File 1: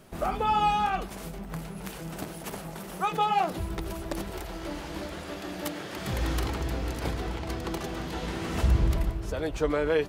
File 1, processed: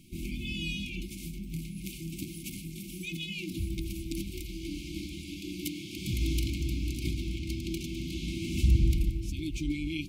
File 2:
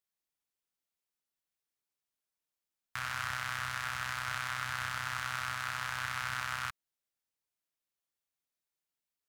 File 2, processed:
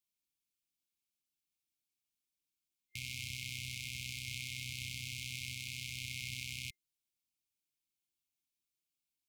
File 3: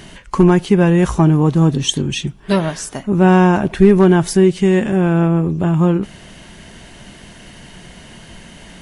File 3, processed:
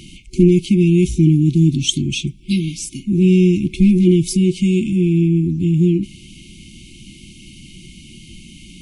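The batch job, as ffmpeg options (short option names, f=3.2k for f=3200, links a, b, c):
-af "afftfilt=real='re*(1-between(b*sr/4096,370,2100))':imag='im*(1-between(b*sr/4096,370,2100))':win_size=4096:overlap=0.75"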